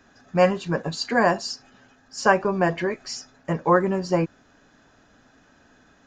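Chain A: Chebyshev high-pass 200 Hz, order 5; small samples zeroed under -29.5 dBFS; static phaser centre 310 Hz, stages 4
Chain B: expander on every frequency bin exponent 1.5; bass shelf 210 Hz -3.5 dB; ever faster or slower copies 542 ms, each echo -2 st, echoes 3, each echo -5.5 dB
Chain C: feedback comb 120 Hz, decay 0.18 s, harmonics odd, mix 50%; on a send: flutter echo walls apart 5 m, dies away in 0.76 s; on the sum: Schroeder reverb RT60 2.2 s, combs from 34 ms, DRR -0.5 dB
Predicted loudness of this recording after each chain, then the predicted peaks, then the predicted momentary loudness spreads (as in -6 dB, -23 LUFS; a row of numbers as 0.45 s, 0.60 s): -28.5 LUFS, -26.0 LUFS, -21.5 LUFS; -10.0 dBFS, -4.0 dBFS, -4.0 dBFS; 12 LU, 11 LU, 13 LU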